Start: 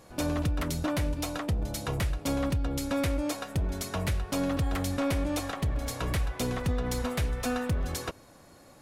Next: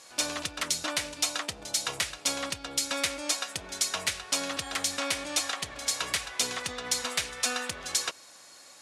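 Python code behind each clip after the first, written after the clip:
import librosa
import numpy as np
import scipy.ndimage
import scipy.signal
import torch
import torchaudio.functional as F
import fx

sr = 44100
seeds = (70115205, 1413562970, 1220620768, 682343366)

y = fx.weighting(x, sr, curve='ITU-R 468')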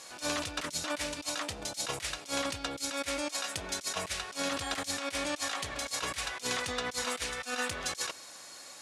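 y = fx.over_compress(x, sr, threshold_db=-34.0, ratio=-0.5)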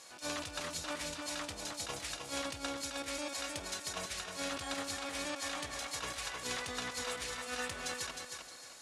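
y = fx.echo_feedback(x, sr, ms=311, feedback_pct=31, wet_db=-5.0)
y = y * 10.0 ** (-6.0 / 20.0)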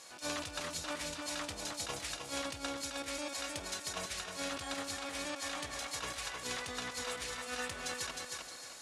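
y = fx.rider(x, sr, range_db=3, speed_s=0.5)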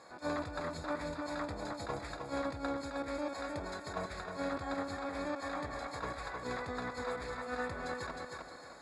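y = np.convolve(x, np.full(15, 1.0 / 15))[:len(x)]
y = y * 10.0 ** (5.5 / 20.0)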